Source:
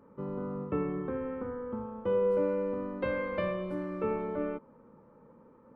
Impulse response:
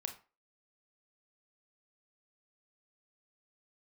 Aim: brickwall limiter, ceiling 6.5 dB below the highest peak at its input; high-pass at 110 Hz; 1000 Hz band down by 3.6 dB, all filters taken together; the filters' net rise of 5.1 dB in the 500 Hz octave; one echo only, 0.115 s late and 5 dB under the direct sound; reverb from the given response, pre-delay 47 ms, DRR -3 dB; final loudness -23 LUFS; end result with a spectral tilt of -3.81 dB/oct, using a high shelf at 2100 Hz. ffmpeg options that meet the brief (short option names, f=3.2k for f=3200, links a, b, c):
-filter_complex "[0:a]highpass=110,equalizer=f=500:t=o:g=6.5,equalizer=f=1k:t=o:g=-7,highshelf=f=2.1k:g=5.5,alimiter=limit=-21.5dB:level=0:latency=1,aecho=1:1:115:0.562,asplit=2[a][b];[1:a]atrim=start_sample=2205,adelay=47[c];[b][c]afir=irnorm=-1:irlink=0,volume=4.5dB[d];[a][d]amix=inputs=2:normalize=0,volume=3dB"